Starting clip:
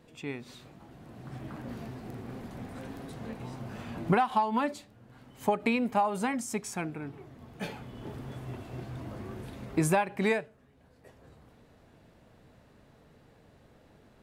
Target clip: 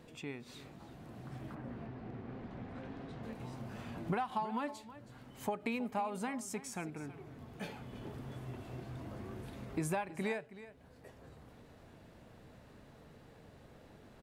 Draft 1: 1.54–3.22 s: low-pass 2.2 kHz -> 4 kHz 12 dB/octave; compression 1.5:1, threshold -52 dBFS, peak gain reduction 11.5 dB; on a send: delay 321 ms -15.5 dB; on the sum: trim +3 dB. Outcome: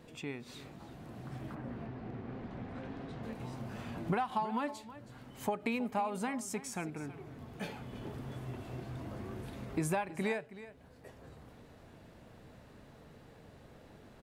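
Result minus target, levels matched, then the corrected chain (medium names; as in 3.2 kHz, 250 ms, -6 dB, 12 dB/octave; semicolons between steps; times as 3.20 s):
compression: peak gain reduction -2.5 dB
1.54–3.22 s: low-pass 2.2 kHz -> 4 kHz 12 dB/octave; compression 1.5:1, threshold -59.5 dBFS, peak gain reduction 14 dB; on a send: delay 321 ms -15.5 dB; on the sum: trim +3 dB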